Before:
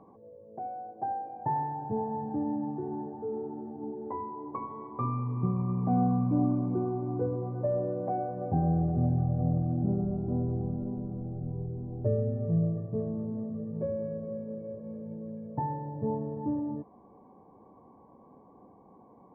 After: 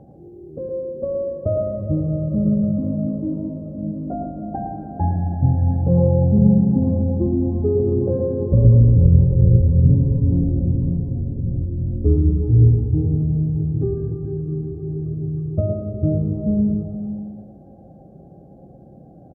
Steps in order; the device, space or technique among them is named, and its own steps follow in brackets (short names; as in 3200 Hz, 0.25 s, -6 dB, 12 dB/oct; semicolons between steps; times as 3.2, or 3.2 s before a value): monster voice (pitch shift -6 st; low shelf 230 Hz +8.5 dB; echo 0.111 s -6.5 dB; reverb RT60 1.7 s, pre-delay 0.11 s, DRR 7 dB); gain +6.5 dB